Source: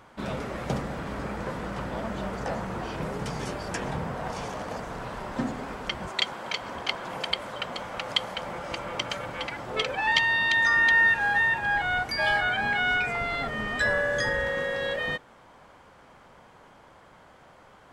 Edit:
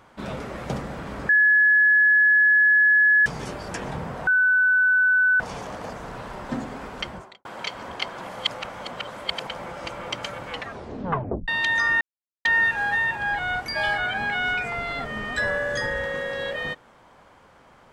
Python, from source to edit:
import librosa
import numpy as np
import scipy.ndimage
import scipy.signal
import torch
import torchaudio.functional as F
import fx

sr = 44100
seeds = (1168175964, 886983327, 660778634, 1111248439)

y = fx.studio_fade_out(x, sr, start_s=5.91, length_s=0.41)
y = fx.edit(y, sr, fx.bleep(start_s=1.29, length_s=1.97, hz=1700.0, db=-13.5),
    fx.insert_tone(at_s=4.27, length_s=1.13, hz=1500.0, db=-15.5),
    fx.reverse_span(start_s=7.16, length_s=1.18),
    fx.tape_stop(start_s=9.37, length_s=0.98),
    fx.insert_silence(at_s=10.88, length_s=0.44), tone=tone)